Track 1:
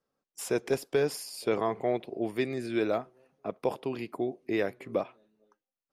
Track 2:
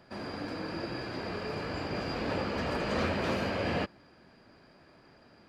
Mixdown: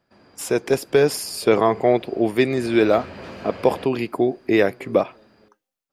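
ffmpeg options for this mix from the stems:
-filter_complex "[0:a]dynaudnorm=f=220:g=3:m=1.78,volume=1.33[s0];[1:a]acompressor=threshold=0.0158:ratio=10,volume=0.794,afade=t=in:st=2.42:d=0.48:silence=0.298538[s1];[s0][s1]amix=inputs=2:normalize=0,dynaudnorm=f=350:g=5:m=1.78"

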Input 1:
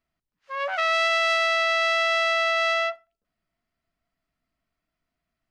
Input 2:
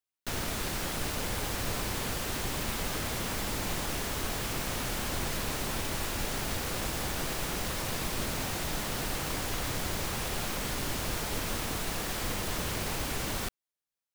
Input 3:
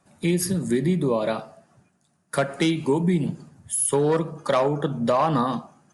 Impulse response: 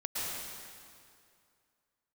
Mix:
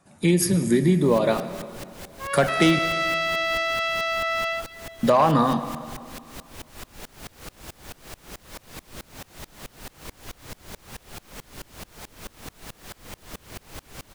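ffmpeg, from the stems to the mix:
-filter_complex "[0:a]adelay=1700,volume=0.631,asplit=2[s0][s1];[s1]volume=0.15[s2];[1:a]aeval=exprs='val(0)*pow(10,-27*if(lt(mod(-4.6*n/s,1),2*abs(-4.6)/1000),1-mod(-4.6*n/s,1)/(2*abs(-4.6)/1000),(mod(-4.6*n/s,1)-2*abs(-4.6)/1000)/(1-2*abs(-4.6)/1000))/20)':c=same,adelay=750,volume=0.841[s3];[2:a]volume=1.26,asplit=3[s4][s5][s6];[s4]atrim=end=2.79,asetpts=PTS-STARTPTS,afade=t=out:st=2.786:d=0.004:c=hsin[s7];[s5]atrim=start=2.79:end=5.03,asetpts=PTS-STARTPTS,volume=0[s8];[s6]atrim=start=5.03,asetpts=PTS-STARTPTS,afade=t=in:d=0.004:c=hsin[s9];[s7][s8][s9]concat=n=3:v=0:a=1,asplit=2[s10][s11];[s11]volume=0.158[s12];[3:a]atrim=start_sample=2205[s13];[s2][s12]amix=inputs=2:normalize=0[s14];[s14][s13]afir=irnorm=-1:irlink=0[s15];[s0][s3][s10][s15]amix=inputs=4:normalize=0"

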